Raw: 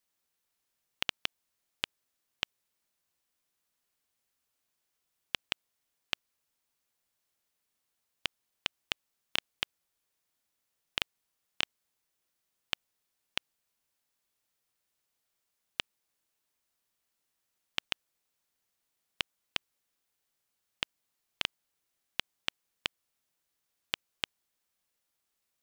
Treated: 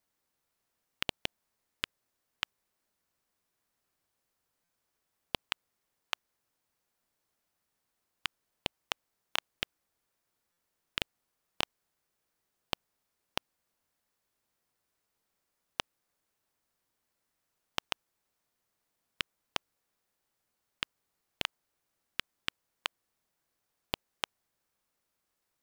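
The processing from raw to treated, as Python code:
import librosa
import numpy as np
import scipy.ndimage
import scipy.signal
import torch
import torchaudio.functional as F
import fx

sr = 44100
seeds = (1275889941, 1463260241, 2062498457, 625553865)

p1 = fx.sample_hold(x, sr, seeds[0], rate_hz=3900.0, jitter_pct=0)
p2 = x + (p1 * librosa.db_to_amplitude(-6.5))
p3 = fx.buffer_glitch(p2, sr, at_s=(4.64, 10.52), block=256, repeats=8)
y = p3 * librosa.db_to_amplitude(-1.5)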